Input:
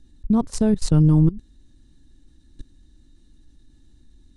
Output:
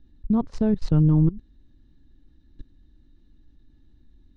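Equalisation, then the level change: air absorption 230 m; -2.5 dB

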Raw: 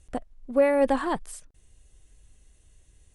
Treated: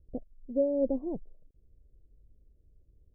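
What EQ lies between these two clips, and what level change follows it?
steep low-pass 560 Hz 36 dB/oct; -4.0 dB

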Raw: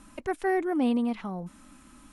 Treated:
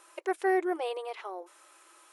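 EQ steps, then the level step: brick-wall FIR high-pass 330 Hz; 0.0 dB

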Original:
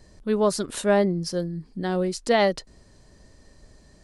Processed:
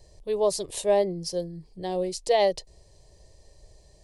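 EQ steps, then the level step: fixed phaser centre 580 Hz, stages 4; 0.0 dB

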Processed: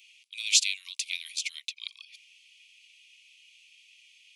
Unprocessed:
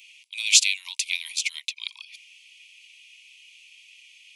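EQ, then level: rippled Chebyshev high-pass 1100 Hz, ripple 3 dB; -4.5 dB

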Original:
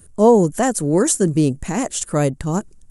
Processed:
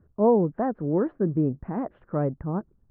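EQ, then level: HPF 59 Hz 6 dB/oct; LPF 1500 Hz 24 dB/oct; air absorption 410 m; -6.5 dB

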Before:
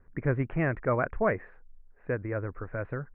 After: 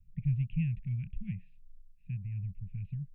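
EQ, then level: Chebyshev band-stop 190–2600 Hz, order 5; dynamic EQ 340 Hz, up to +6 dB, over -52 dBFS, Q 1.5; 0.0 dB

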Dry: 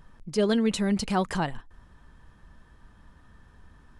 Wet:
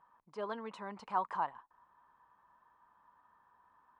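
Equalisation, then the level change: band-pass 1000 Hz, Q 5.1; +2.5 dB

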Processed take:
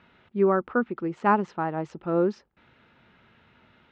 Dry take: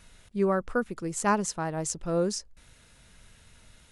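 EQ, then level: speaker cabinet 120–3100 Hz, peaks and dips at 240 Hz +5 dB, 360 Hz +7 dB, 850 Hz +6 dB, 1300 Hz +5 dB; 0.0 dB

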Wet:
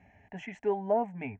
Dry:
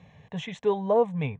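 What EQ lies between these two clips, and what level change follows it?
air absorption 90 m; fixed phaser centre 740 Hz, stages 8; 0.0 dB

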